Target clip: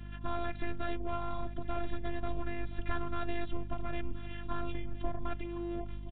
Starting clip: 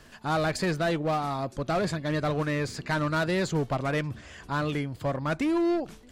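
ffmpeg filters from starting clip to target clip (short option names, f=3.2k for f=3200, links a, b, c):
-filter_complex "[0:a]bandreject=f=2k:w=19,aeval=exprs='val(0)*sin(2*PI*120*n/s)':c=same,lowshelf=f=220:t=q:w=3:g=10,acompressor=threshold=-30dB:ratio=6,afftfilt=real='hypot(re,im)*cos(PI*b)':imag='0':win_size=512:overlap=0.75,aeval=exprs='val(0)+0.00447*(sin(2*PI*50*n/s)+sin(2*PI*2*50*n/s)/2+sin(2*PI*3*50*n/s)/3+sin(2*PI*4*50*n/s)/4+sin(2*PI*5*50*n/s)/5)':c=same,aresample=8000,aresample=44100,asplit=2[a][b];[b]aecho=0:1:1022:0.141[c];[a][c]amix=inputs=2:normalize=0,volume=4.5dB"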